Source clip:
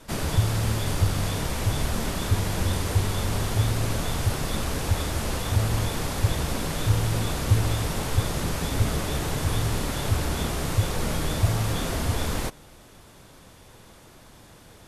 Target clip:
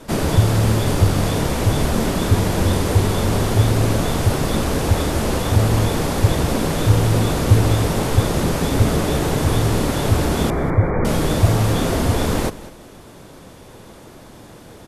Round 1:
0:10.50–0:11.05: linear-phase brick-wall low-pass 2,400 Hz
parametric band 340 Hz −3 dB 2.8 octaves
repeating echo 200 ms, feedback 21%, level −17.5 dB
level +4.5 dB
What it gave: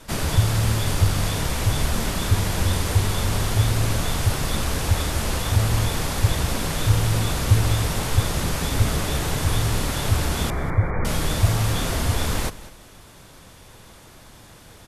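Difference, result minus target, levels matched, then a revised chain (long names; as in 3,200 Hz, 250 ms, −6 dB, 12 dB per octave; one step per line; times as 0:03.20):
250 Hz band −4.5 dB
0:10.50–0:11.05: linear-phase brick-wall low-pass 2,400 Hz
parametric band 340 Hz +7.5 dB 2.8 octaves
repeating echo 200 ms, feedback 21%, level −17.5 dB
level +4.5 dB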